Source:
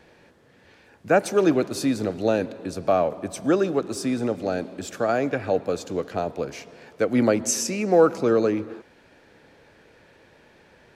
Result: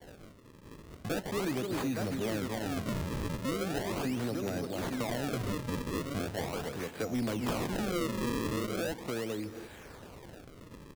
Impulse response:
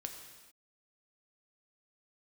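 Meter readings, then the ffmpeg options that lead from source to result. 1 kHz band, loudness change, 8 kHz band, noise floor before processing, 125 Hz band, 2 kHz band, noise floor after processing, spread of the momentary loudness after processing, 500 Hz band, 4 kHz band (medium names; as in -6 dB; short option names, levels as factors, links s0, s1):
-10.5 dB, -11.0 dB, -12.5 dB, -56 dBFS, -2.5 dB, -7.0 dB, -52 dBFS, 17 LU, -13.5 dB, -4.0 dB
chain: -filter_complex "[0:a]lowpass=f=8200:w=0.5412,lowpass=f=8200:w=1.3066,lowshelf=f=120:g=11.5,agate=range=0.0224:threshold=0.00447:ratio=3:detection=peak,aecho=1:1:262|857:0.422|0.376,asplit=2[s0][s1];[s1]aeval=exprs='(mod(3.35*val(0)+1,2)-1)/3.35':c=same,volume=0.316[s2];[s0][s2]amix=inputs=2:normalize=0,acrossover=split=250[s3][s4];[s4]acompressor=threshold=0.0447:ratio=2[s5];[s3][s5]amix=inputs=2:normalize=0,highshelf=f=2500:g=11,acrusher=samples=34:mix=1:aa=0.000001:lfo=1:lforange=54.4:lforate=0.39,acompressor=threshold=0.00708:ratio=2,asoftclip=type=tanh:threshold=0.0422,volume=1.33"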